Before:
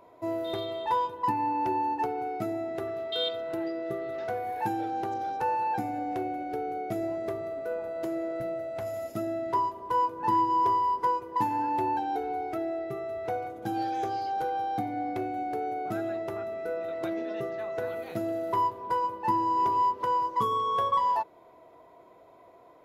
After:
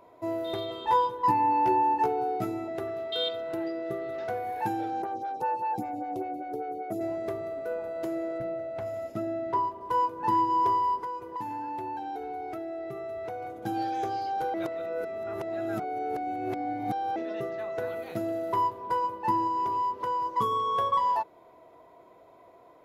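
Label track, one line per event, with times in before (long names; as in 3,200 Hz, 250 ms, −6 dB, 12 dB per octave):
0.690000	2.680000	double-tracking delay 16 ms −2 dB
5.020000	7.010000	phaser with staggered stages 5.1 Hz
8.380000	9.810000	low-pass filter 2,800 Hz 6 dB per octave
11.010000	13.580000	downward compressor 4 to 1, threshold −33 dBFS
14.540000	17.160000	reverse
19.470000	20.260000	downward compressor 2.5 to 1, threshold −27 dBFS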